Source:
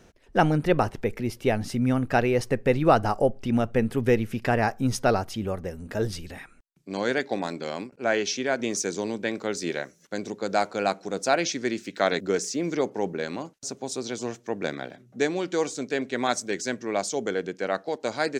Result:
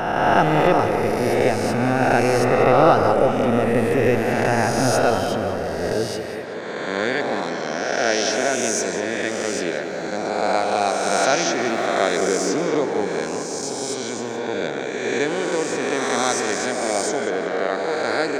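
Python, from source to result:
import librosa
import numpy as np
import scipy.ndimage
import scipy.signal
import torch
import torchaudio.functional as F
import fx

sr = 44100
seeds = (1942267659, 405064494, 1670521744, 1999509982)

y = fx.spec_swells(x, sr, rise_s=2.07)
y = fx.highpass(y, sr, hz=130.0, slope=12, at=(5.93, 6.91))
y = fx.echo_tape(y, sr, ms=187, feedback_pct=80, wet_db=-7, lp_hz=3300.0, drive_db=4.0, wow_cents=12)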